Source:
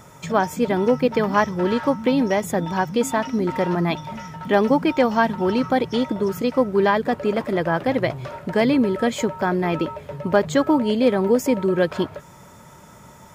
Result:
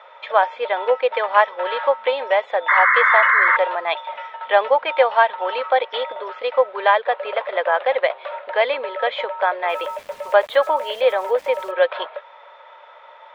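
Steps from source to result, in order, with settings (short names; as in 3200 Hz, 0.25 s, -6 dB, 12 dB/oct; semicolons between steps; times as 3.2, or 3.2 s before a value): Chebyshev band-pass 520–3700 Hz, order 4; 2.68–3.57 painted sound noise 1000–2200 Hz -20 dBFS; 9.69–11.71 sample gate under -45 dBFS; gain +5 dB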